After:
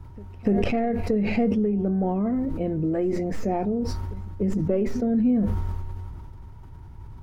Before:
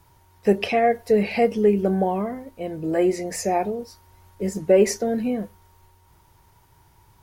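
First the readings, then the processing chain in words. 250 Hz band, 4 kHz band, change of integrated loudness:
+2.0 dB, -8.0 dB, -2.5 dB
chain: tracing distortion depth 0.1 ms; RIAA curve playback; compression 6:1, threshold -25 dBFS, peak gain reduction 17 dB; small resonant body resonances 250/1300 Hz, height 7 dB, ringing for 30 ms; pre-echo 294 ms -22.5 dB; decay stretcher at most 21 dB/s

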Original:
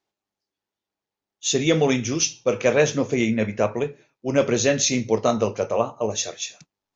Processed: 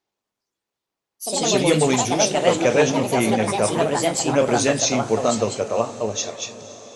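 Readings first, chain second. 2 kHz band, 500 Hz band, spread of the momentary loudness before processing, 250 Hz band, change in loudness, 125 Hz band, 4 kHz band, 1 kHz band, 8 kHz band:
+2.0 dB, +2.0 dB, 9 LU, +1.5 dB, +2.5 dB, +1.5 dB, +3.0 dB, +7.0 dB, no reading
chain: ever faster or slower copies 118 ms, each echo +3 st, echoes 3; echo that smears into a reverb 528 ms, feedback 53%, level -16 dB

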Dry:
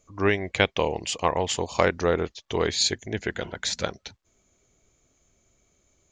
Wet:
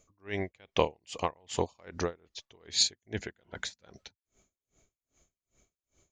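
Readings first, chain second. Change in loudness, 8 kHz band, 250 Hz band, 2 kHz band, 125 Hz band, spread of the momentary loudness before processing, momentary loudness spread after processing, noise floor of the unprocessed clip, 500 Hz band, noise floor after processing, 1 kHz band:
-7.0 dB, -5.0 dB, -10.0 dB, -13.0 dB, -9.5 dB, 8 LU, 20 LU, -69 dBFS, -10.0 dB, under -85 dBFS, -8.5 dB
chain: logarithmic tremolo 2.5 Hz, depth 38 dB

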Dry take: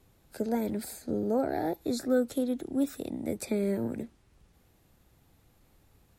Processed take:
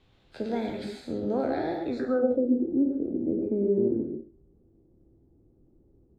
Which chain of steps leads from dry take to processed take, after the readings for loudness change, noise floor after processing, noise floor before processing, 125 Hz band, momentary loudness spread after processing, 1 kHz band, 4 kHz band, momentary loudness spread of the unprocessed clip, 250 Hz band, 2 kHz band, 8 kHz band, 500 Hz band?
+3.5 dB, -63 dBFS, -65 dBFS, +1.0 dB, 10 LU, +1.0 dB, no reading, 8 LU, +3.5 dB, +1.0 dB, under -15 dB, +4.0 dB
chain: spectral sustain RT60 0.36 s; gated-style reverb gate 160 ms rising, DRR 3 dB; low-pass sweep 3.5 kHz -> 360 Hz, 1.80–2.51 s; trim -2 dB

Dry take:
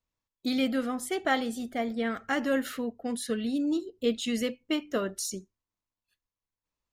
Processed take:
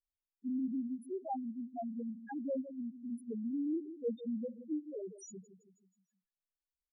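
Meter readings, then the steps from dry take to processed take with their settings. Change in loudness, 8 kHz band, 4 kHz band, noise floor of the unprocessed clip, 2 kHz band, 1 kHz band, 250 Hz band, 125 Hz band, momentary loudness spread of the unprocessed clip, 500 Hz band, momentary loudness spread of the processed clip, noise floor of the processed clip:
-9.5 dB, under -15 dB, under -35 dB, under -85 dBFS, under -25 dB, -11.0 dB, -7.5 dB, no reading, 7 LU, -10.5 dB, 9 LU, under -85 dBFS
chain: vibrato 2.7 Hz 7.4 cents; feedback delay 161 ms, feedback 50%, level -12 dB; loudest bins only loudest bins 1; trim -2.5 dB

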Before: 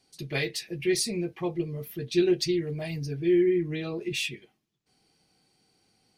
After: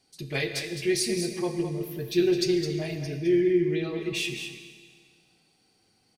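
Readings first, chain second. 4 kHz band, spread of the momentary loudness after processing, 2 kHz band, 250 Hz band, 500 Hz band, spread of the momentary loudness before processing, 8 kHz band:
+1.5 dB, 10 LU, +1.5 dB, +1.0 dB, +1.0 dB, 10 LU, +1.5 dB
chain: delay 211 ms -8 dB; Schroeder reverb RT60 1.9 s, combs from 26 ms, DRR 8 dB

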